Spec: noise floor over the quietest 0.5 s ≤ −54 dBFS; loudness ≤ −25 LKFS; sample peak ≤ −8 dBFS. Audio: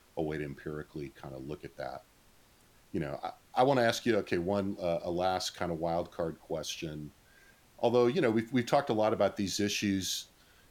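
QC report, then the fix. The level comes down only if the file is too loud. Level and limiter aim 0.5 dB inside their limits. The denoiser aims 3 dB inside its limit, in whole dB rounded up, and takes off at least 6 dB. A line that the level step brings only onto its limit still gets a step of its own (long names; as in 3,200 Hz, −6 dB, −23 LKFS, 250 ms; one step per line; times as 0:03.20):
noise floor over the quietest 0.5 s −62 dBFS: in spec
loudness −32.0 LKFS: in spec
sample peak −13.0 dBFS: in spec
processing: no processing needed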